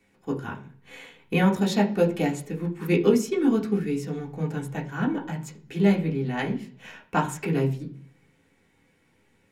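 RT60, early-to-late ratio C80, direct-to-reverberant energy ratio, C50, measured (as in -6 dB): 0.45 s, 17.0 dB, -3.0 dB, 12.5 dB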